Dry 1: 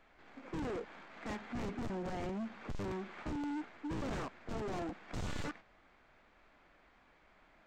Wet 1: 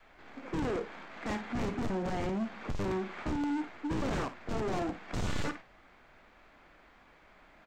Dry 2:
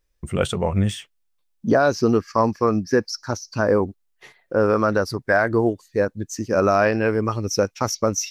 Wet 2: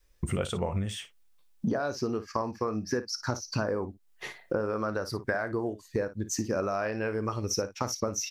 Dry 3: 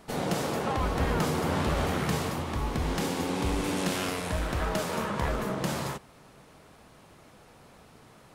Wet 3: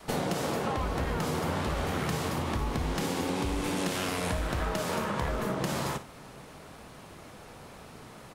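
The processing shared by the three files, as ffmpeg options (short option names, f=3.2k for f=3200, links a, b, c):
-af "adynamicequalizer=threshold=0.0316:dfrequency=200:dqfactor=0.79:tfrequency=200:tqfactor=0.79:attack=5:release=100:ratio=0.375:range=2:mode=cutabove:tftype=bell,acompressor=threshold=-33dB:ratio=12,aecho=1:1:32|56:0.15|0.211,volume=6dB"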